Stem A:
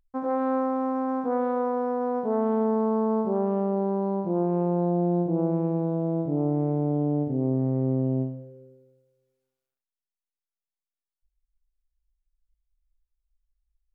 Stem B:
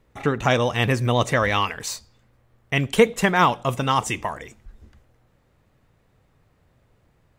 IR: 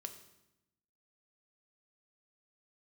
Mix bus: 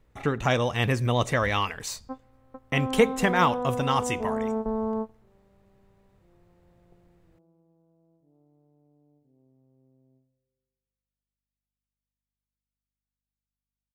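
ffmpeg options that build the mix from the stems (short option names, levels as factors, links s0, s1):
-filter_complex "[0:a]aeval=exprs='val(0)+0.00224*(sin(2*PI*50*n/s)+sin(2*PI*2*50*n/s)/2+sin(2*PI*3*50*n/s)/3+sin(2*PI*4*50*n/s)/4+sin(2*PI*5*50*n/s)/5)':c=same,adelay=1950,volume=0.631[s0];[1:a]lowshelf=f=62:g=7.5,volume=0.596,asplit=2[s1][s2];[s2]apad=whole_len=700768[s3];[s0][s3]sidechaingate=range=0.0178:threshold=0.00224:ratio=16:detection=peak[s4];[s4][s1]amix=inputs=2:normalize=0"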